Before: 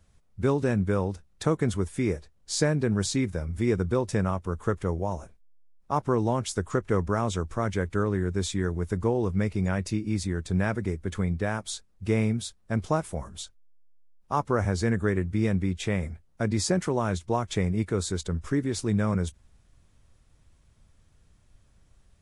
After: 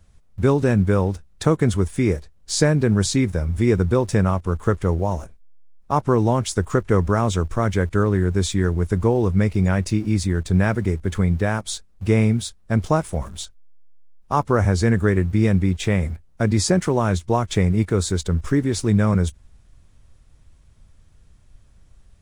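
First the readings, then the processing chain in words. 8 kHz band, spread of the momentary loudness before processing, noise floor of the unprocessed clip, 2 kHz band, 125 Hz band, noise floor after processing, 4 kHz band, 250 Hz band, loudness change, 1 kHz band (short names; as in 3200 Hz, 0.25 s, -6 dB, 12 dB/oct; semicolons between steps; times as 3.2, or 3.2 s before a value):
+6.0 dB, 6 LU, -62 dBFS, +6.0 dB, +8.5 dB, -53 dBFS, +6.0 dB, +7.0 dB, +7.5 dB, +6.0 dB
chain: low shelf 86 Hz +6.5 dB; in parallel at -11 dB: sample gate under -38 dBFS; on the sum: gain +4 dB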